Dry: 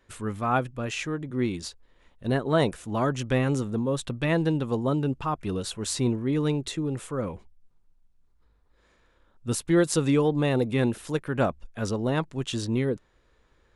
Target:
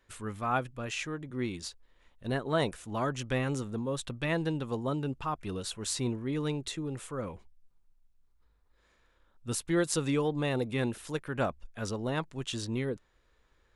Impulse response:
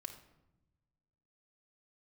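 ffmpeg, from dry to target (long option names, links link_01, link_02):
-af "equalizer=frequency=220:width=0.31:gain=-4.5,volume=-3dB"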